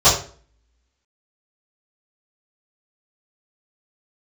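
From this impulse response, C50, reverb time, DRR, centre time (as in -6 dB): 6.5 dB, 0.45 s, -16.0 dB, 33 ms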